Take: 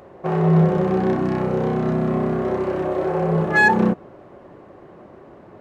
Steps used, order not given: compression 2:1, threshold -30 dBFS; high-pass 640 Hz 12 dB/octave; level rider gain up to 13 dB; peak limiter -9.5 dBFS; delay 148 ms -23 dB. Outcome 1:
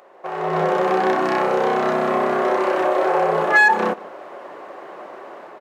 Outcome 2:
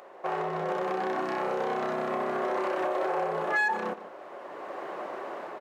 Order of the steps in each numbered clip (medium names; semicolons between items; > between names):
high-pass > peak limiter > compression > delay > level rider; delay > level rider > peak limiter > high-pass > compression